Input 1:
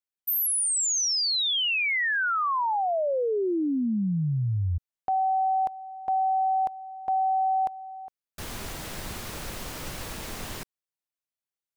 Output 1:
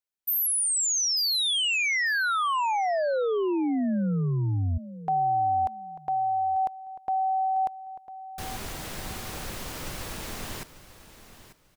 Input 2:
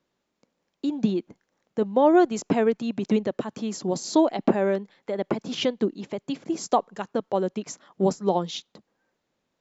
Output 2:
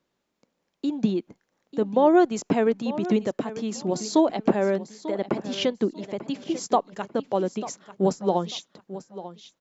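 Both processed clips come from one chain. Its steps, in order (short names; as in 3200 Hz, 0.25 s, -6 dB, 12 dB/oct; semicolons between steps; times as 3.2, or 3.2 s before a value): feedback echo 0.893 s, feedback 23%, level -14.5 dB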